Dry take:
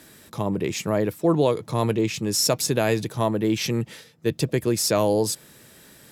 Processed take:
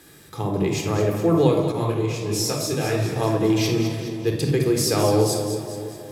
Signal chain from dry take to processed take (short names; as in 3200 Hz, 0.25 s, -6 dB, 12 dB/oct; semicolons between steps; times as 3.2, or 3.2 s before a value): split-band echo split 850 Hz, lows 0.321 s, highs 0.209 s, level -9 dB; shoebox room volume 2900 m³, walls furnished, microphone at 3.9 m; 1.72–3.16 detuned doubles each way 53 cents; gain -2.5 dB